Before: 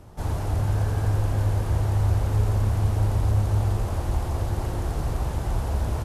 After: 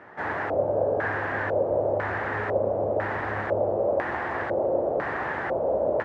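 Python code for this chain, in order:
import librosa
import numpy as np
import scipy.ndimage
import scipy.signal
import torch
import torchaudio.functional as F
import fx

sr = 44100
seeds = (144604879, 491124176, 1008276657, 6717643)

y = scipy.signal.sosfilt(scipy.signal.butter(2, 350.0, 'highpass', fs=sr, output='sos'), x)
y = fx.filter_lfo_lowpass(y, sr, shape='square', hz=1.0, low_hz=570.0, high_hz=1800.0, q=6.5)
y = y * 10.0 ** (4.5 / 20.0)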